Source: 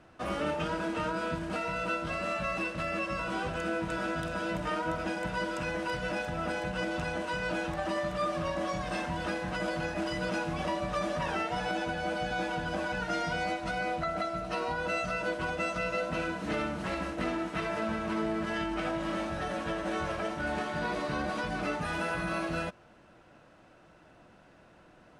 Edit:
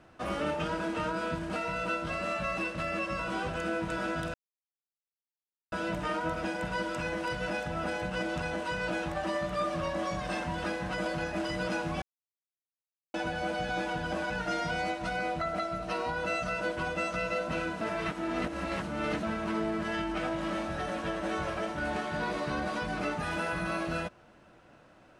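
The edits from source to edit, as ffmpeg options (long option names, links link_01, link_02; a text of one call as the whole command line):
ffmpeg -i in.wav -filter_complex "[0:a]asplit=6[link_01][link_02][link_03][link_04][link_05][link_06];[link_01]atrim=end=4.34,asetpts=PTS-STARTPTS,afade=type=out:start_time=4.336:duration=0.004:curve=hsin,apad=pad_dur=1.38[link_07];[link_02]atrim=start=4.34:end=10.64,asetpts=PTS-STARTPTS,afade=type=in:duration=0.004:curve=hsin,afade=type=out:start_time=6.296:duration=0.004:curve=hsin[link_08];[link_03]atrim=start=10.64:end=11.76,asetpts=PTS-STARTPTS,volume=0[link_09];[link_04]atrim=start=11.76:end=16.432,asetpts=PTS-STARTPTS,afade=type=in:duration=0.004:curve=hsin[link_10];[link_05]atrim=start=16.428:end=17.852,asetpts=PTS-STARTPTS,areverse[link_11];[link_06]atrim=start=17.848[link_12];[link_07][link_08][link_09][link_10]concat=n=4:v=0:a=1[link_13];[link_13][link_11]acrossfade=duration=0.004:curve1=hsin:curve2=hsin[link_14];[link_14][link_12]acrossfade=duration=0.004:curve1=hsin:curve2=hsin" out.wav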